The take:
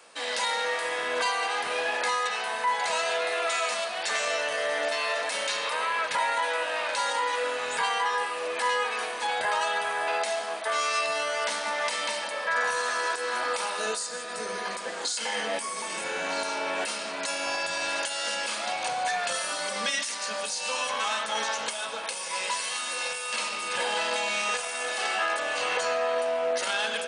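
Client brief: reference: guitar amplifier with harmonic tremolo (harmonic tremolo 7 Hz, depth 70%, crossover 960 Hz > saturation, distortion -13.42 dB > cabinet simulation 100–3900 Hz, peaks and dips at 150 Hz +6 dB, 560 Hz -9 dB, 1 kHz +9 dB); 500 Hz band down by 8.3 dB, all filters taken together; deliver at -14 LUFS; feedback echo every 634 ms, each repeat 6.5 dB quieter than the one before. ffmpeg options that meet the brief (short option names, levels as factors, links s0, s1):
-filter_complex "[0:a]equalizer=f=500:t=o:g=-6.5,aecho=1:1:634|1268|1902|2536|3170|3804:0.473|0.222|0.105|0.0491|0.0231|0.0109,acrossover=split=960[s0][s1];[s0]aeval=exprs='val(0)*(1-0.7/2+0.7/2*cos(2*PI*7*n/s))':c=same[s2];[s1]aeval=exprs='val(0)*(1-0.7/2-0.7/2*cos(2*PI*7*n/s))':c=same[s3];[s2][s3]amix=inputs=2:normalize=0,asoftclip=threshold=0.0355,highpass=100,equalizer=f=150:t=q:w=4:g=6,equalizer=f=560:t=q:w=4:g=-9,equalizer=f=1000:t=q:w=4:g=9,lowpass=f=3900:w=0.5412,lowpass=f=3900:w=1.3066,volume=8.41"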